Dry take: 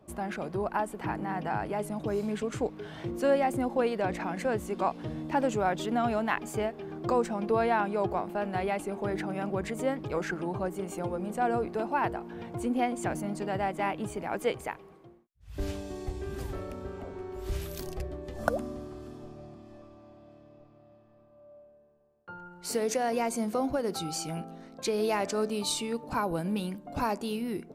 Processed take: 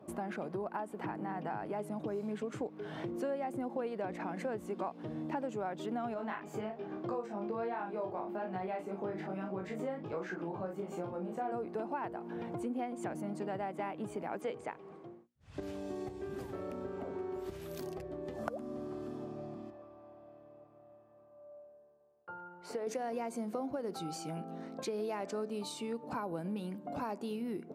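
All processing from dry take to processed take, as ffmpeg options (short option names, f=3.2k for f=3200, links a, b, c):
-filter_complex "[0:a]asettb=1/sr,asplit=3[a][b][c];[a]atrim=end=6.144[d];[b]atrim=start=6.14:end=11.52,asetpts=PTS-STARTPTS,afade=t=in:d=0.004:c=qsin,afade=t=out:st=5.376:d=0.004:c=qsin,equalizer=f=9.9k:t=o:w=0.65:g=-10,flanger=delay=16:depth=4.1:speed=1.2,asplit=2[e][f];[f]adelay=37,volume=-6dB[g];[e][g]amix=inputs=2:normalize=0,atrim=end_sample=237258[h];[c]atrim=start=11.516[i];[d][h]acrossfade=d=0.004:c1=hsin:c2=qsin[j];[j][i]acrossfade=d=0.004:c1=qsin:c2=hsin,asettb=1/sr,asplit=3[k][l][m];[k]atrim=end=14.414[n];[l]atrim=start=14.41:end=15.63,asetpts=PTS-STARTPTS,afade=t=in:d=0.004:c=qsin,afade=t=out:st=1.216:d=0.004:c=qsin,lowpass=f=9.1k:w=0.5412,lowpass=f=9.1k:w=1.3066,bandreject=f=60:t=h:w=6,bandreject=f=120:t=h:w=6,bandreject=f=180:t=h:w=6,bandreject=f=240:t=h:w=6,bandreject=f=300:t=h:w=6,bandreject=f=360:t=h:w=6,bandreject=f=420:t=h:w=6,bandreject=f=480:t=h:w=6,bandreject=f=540:t=h:w=6[o];[m]atrim=start=15.626[p];[n][o]acrossfade=d=0.004:c1=hsin:c2=qsin[q];[q][p]acrossfade=d=0.004:c1=qsin:c2=hsin,asettb=1/sr,asplit=3[r][s][t];[r]atrim=end=19.704[u];[s]atrim=start=19.7:end=22.87,asetpts=PTS-STARTPTS,afade=t=in:d=0.004:c=qsin,afade=t=out:st=3.166:d=0.004:c=qsin,lowpass=f=1.2k:p=1,equalizer=f=210:w=0.76:g=-12.5[v];[t]atrim=start=22.866[w];[u][v]acrossfade=d=0.004:c1=hsin:c2=qsin[x];[x][w]acrossfade=d=0.004:c1=qsin:c2=hsin,acompressor=threshold=-41dB:ratio=4,highpass=160,highshelf=f=2k:g=-9,volume=5dB"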